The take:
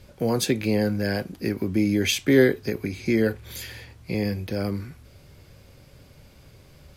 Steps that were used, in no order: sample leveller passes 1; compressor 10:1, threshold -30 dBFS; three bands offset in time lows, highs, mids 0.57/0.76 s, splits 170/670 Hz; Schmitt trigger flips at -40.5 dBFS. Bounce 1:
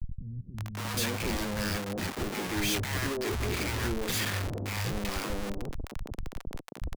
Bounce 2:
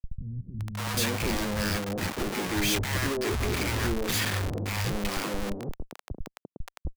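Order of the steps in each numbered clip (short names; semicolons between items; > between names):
sample leveller > Schmitt trigger > compressor > three bands offset in time; Schmitt trigger > compressor > sample leveller > three bands offset in time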